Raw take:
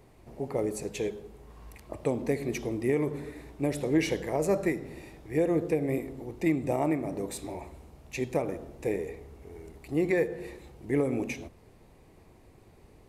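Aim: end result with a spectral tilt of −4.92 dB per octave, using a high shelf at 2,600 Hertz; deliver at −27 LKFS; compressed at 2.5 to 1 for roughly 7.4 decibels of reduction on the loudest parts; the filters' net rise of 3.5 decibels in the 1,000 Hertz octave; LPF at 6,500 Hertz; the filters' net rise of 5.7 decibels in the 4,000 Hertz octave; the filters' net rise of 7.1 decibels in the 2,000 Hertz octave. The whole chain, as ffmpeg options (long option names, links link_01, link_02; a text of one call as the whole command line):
ffmpeg -i in.wav -af "lowpass=6500,equalizer=frequency=1000:width_type=o:gain=3.5,equalizer=frequency=2000:width_type=o:gain=5,highshelf=frequency=2600:gain=3.5,equalizer=frequency=4000:width_type=o:gain=3,acompressor=threshold=-31dB:ratio=2.5,volume=8dB" out.wav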